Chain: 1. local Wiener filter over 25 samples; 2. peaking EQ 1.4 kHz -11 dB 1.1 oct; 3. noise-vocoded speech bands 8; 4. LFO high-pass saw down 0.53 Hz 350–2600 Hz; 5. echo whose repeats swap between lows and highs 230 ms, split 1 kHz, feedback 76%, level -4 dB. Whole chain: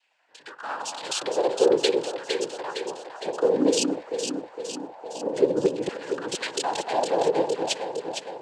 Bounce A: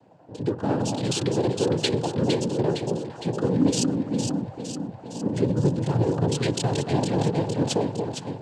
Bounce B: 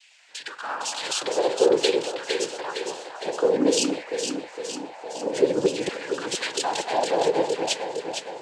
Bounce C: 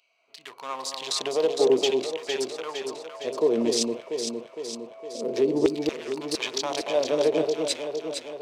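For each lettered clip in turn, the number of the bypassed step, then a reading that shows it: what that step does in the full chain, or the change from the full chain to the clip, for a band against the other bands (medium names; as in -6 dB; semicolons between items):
4, 125 Hz band +22.5 dB; 1, 2 kHz band +2.5 dB; 3, 1 kHz band -5.0 dB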